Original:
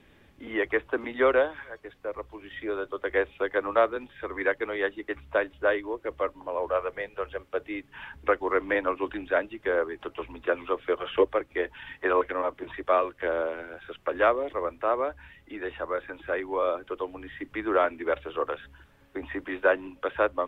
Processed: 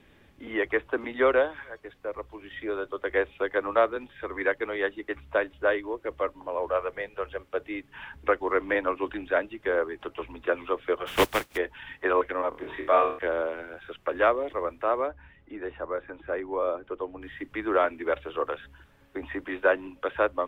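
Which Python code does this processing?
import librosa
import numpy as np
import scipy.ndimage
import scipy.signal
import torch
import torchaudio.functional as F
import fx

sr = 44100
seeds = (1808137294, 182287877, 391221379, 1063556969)

y = fx.spec_flatten(x, sr, power=0.41, at=(11.06, 11.56), fade=0.02)
y = fx.room_flutter(y, sr, wall_m=4.5, rt60_s=0.4, at=(12.49, 13.19))
y = fx.lowpass(y, sr, hz=1200.0, slope=6, at=(15.06, 17.21), fade=0.02)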